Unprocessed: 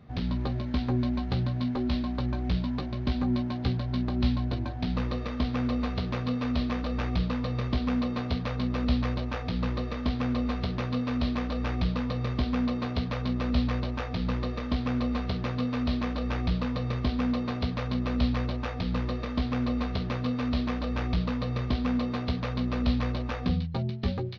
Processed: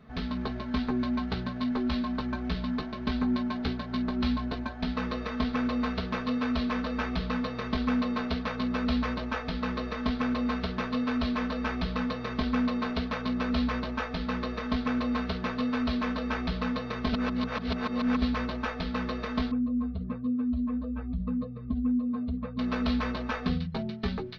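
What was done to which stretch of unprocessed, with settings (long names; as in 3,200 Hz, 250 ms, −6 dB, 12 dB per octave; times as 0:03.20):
0:17.13–0:18.22: reverse
0:19.51–0:22.59: expanding power law on the bin magnitudes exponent 2
whole clip: parametric band 1,400 Hz +6.5 dB 1.1 octaves; mains-hum notches 60/120/180/240 Hz; comb filter 4.6 ms, depth 80%; level −2.5 dB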